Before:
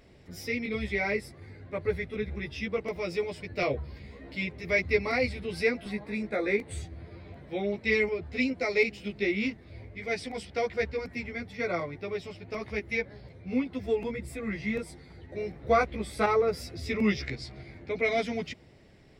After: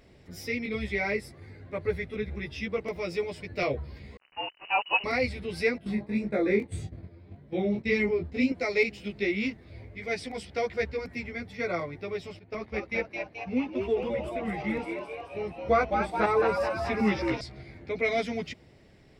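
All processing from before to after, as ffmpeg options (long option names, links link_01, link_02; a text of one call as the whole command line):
ffmpeg -i in.wav -filter_complex "[0:a]asettb=1/sr,asplit=3[link_01][link_02][link_03];[link_01]atrim=end=4.174[link_04];[link_02]atrim=start=4.17:end=5.04,asetpts=PTS-STARTPTS,afade=type=in:duration=0.004:curve=qsin,afade=type=out:start_time=0.866:duration=0.004:curve=qsin,aemphasis=mode=production:type=50kf,aeval=exprs='sgn(val(0))*max(abs(val(0))-0.0106,0)':channel_layout=same,lowpass=frequency=2600:width_type=q:width=0.5098,lowpass=frequency=2600:width_type=q:width=0.6013,lowpass=frequency=2600:width_type=q:width=0.9,lowpass=frequency=2600:width_type=q:width=2.563,afreqshift=-3000[link_05];[link_03]atrim=start=5.036[link_06];[link_04][link_05]acrossfade=duration=0.004:curve1=hsin:curve2=qsin[link_07];[link_07][link_06]acrossfade=duration=0.004:curve1=qsin:curve2=hsin,asettb=1/sr,asplit=3[link_08][link_09][link_10];[link_08]atrim=end=5.784[link_11];[link_09]atrim=start=5.78:end=8.52,asetpts=PTS-STARTPTS,afade=type=in:duration=0.004:curve=qsin,afade=type=out:start_time=2.736:duration=0.004:curve=qsin,agate=range=-10dB:threshold=-43dB:ratio=16:release=100:detection=peak,equalizer=frequency=160:width=0.39:gain=10,flanger=delay=19.5:depth=4.1:speed=1.8[link_12];[link_10]atrim=start=8.516[link_13];[link_11][link_12]acrossfade=duration=0.004:curve1=hsin:curve2=qsin[link_14];[link_14][link_13]acrossfade=duration=0.004:curve1=qsin:curve2=hsin,asettb=1/sr,asplit=3[link_15][link_16][link_17];[link_15]atrim=end=12.394[link_18];[link_16]atrim=start=12.39:end=17.41,asetpts=PTS-STARTPTS,afade=type=in:duration=0.004:curve=qsin,afade=type=out:start_time=5.016:duration=0.004:curve=qsin,agate=range=-9dB:threshold=-42dB:ratio=16:release=100:detection=peak,lowpass=frequency=3600:poles=1,asplit=9[link_19][link_20][link_21][link_22][link_23][link_24][link_25][link_26][link_27];[link_20]adelay=215,afreqshift=120,volume=-5dB[link_28];[link_21]adelay=430,afreqshift=240,volume=-9.4dB[link_29];[link_22]adelay=645,afreqshift=360,volume=-13.9dB[link_30];[link_23]adelay=860,afreqshift=480,volume=-18.3dB[link_31];[link_24]adelay=1075,afreqshift=600,volume=-22.7dB[link_32];[link_25]adelay=1290,afreqshift=720,volume=-27.2dB[link_33];[link_26]adelay=1505,afreqshift=840,volume=-31.6dB[link_34];[link_27]adelay=1720,afreqshift=960,volume=-36.1dB[link_35];[link_19][link_28][link_29][link_30][link_31][link_32][link_33][link_34][link_35]amix=inputs=9:normalize=0,atrim=end_sample=221382[link_36];[link_17]atrim=start=17.406[link_37];[link_18][link_36]acrossfade=duration=0.004:curve1=hsin:curve2=qsin[link_38];[link_38][link_37]acrossfade=duration=0.004:curve1=qsin:curve2=hsin" out.wav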